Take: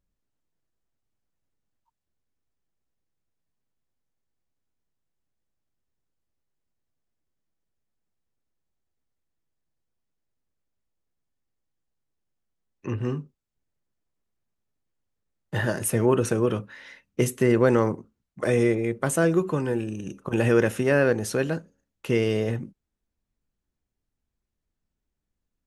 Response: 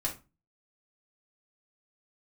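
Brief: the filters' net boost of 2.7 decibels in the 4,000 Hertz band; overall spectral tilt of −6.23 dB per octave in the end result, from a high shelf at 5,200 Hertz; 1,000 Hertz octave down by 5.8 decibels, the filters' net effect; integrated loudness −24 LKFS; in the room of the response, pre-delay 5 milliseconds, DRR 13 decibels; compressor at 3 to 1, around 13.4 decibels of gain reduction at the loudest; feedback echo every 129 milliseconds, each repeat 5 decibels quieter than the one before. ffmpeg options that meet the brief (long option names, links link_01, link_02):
-filter_complex "[0:a]equalizer=frequency=1000:width_type=o:gain=-8,equalizer=frequency=4000:width_type=o:gain=8.5,highshelf=frequency=5200:gain=-8.5,acompressor=threshold=-35dB:ratio=3,aecho=1:1:129|258|387|516|645|774|903:0.562|0.315|0.176|0.0988|0.0553|0.031|0.0173,asplit=2[link_01][link_02];[1:a]atrim=start_sample=2205,adelay=5[link_03];[link_02][link_03]afir=irnorm=-1:irlink=0,volume=-17dB[link_04];[link_01][link_04]amix=inputs=2:normalize=0,volume=11dB"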